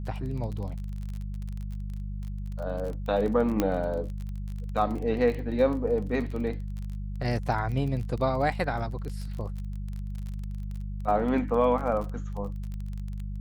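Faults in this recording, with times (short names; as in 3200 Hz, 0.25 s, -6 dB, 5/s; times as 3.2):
crackle 28/s -34 dBFS
hum 50 Hz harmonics 4 -34 dBFS
3.6 pop -11 dBFS
6.31 gap 4.2 ms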